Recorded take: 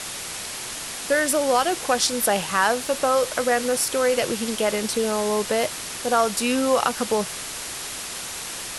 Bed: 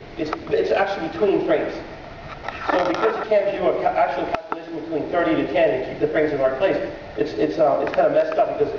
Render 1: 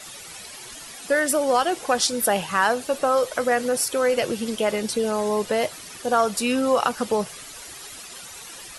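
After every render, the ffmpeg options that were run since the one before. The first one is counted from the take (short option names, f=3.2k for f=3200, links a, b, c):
-af "afftdn=nr=12:nf=-33"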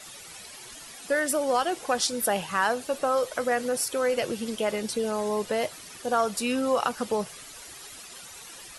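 -af "volume=-4.5dB"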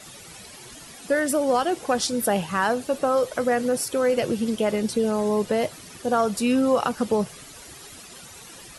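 -af "equalizer=f=130:w=0.32:g=9.5"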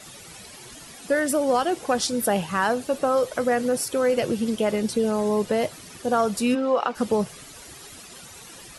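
-filter_complex "[0:a]asplit=3[a][b][c];[a]afade=t=out:st=6.54:d=0.02[d];[b]highpass=340,lowpass=3.6k,afade=t=in:st=6.54:d=0.02,afade=t=out:st=6.94:d=0.02[e];[c]afade=t=in:st=6.94:d=0.02[f];[d][e][f]amix=inputs=3:normalize=0"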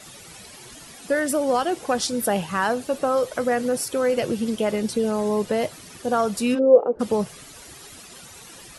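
-filter_complex "[0:a]asplit=3[a][b][c];[a]afade=t=out:st=6.58:d=0.02[d];[b]lowpass=f=470:t=q:w=4.3,afade=t=in:st=6.58:d=0.02,afade=t=out:st=6.99:d=0.02[e];[c]afade=t=in:st=6.99:d=0.02[f];[d][e][f]amix=inputs=3:normalize=0"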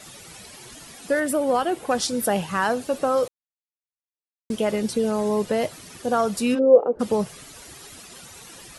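-filter_complex "[0:a]asettb=1/sr,asplit=3[a][b][c];[a]atrim=end=1.204[d];[b]atrim=start=1.2:end=1.91,asetpts=PTS-STARTPTS,afade=t=in:d=0.004:c=qsin,afade=t=out:st=0.706:d=0.004:c=qsin,equalizer=f=5.7k:w=1.5:g=-7.5[e];[c]atrim=start=1.906[f];[d][e]acrossfade=d=0.004:c1=hsin:c2=qsin[g];[g][f]acrossfade=d=0.004:c1=qsin:c2=hsin,asplit=3[h][i][j];[h]atrim=end=3.28,asetpts=PTS-STARTPTS,afade=t=out:st=3.276:d=0.004:c=hsin[k];[i]atrim=start=3.28:end=4.5,asetpts=PTS-STARTPTS,volume=0[l];[j]atrim=start=4.5,asetpts=PTS-STARTPTS,afade=t=in:d=0.004:c=hsin[m];[k][l][m]concat=n=3:v=0:a=1"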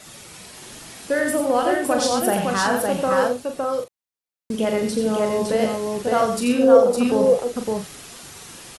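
-filter_complex "[0:a]asplit=2[a][b];[b]adelay=41,volume=-7dB[c];[a][c]amix=inputs=2:normalize=0,aecho=1:1:87|561:0.531|0.708"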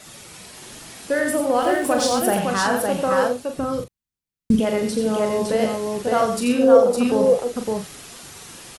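-filter_complex "[0:a]asettb=1/sr,asplit=3[a][b][c];[a]atrim=end=1.624[d];[b]atrim=start=1.62:end=2.39,asetpts=PTS-STARTPTS,afade=t=in:d=0.004:c=qsin,afade=t=out:st=0.766:d=0.004:c=qsin,aeval=exprs='val(0)+0.5*0.0178*sgn(val(0))':c=same[e];[c]atrim=start=2.386[f];[d][e]acrossfade=d=0.004:c1=hsin:c2=qsin[g];[g][f]acrossfade=d=0.004:c1=qsin:c2=hsin,asplit=3[h][i][j];[h]afade=t=out:st=3.57:d=0.02[k];[i]asubboost=boost=10:cutoff=200,afade=t=in:st=3.57:d=0.02,afade=t=out:st=4.59:d=0.02[l];[j]afade=t=in:st=4.59:d=0.02[m];[k][l][m]amix=inputs=3:normalize=0"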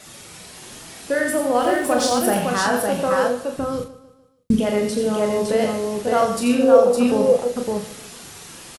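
-filter_complex "[0:a]asplit=2[a][b];[b]adelay=29,volume=-9dB[c];[a][c]amix=inputs=2:normalize=0,aecho=1:1:149|298|447|596:0.141|0.065|0.0299|0.0137"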